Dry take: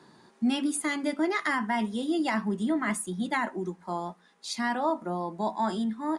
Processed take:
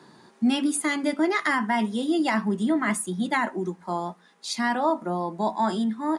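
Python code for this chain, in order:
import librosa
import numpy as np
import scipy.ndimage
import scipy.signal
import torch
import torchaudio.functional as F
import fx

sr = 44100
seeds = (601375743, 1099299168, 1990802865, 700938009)

y = scipy.signal.sosfilt(scipy.signal.butter(2, 69.0, 'highpass', fs=sr, output='sos'), x)
y = y * 10.0 ** (4.0 / 20.0)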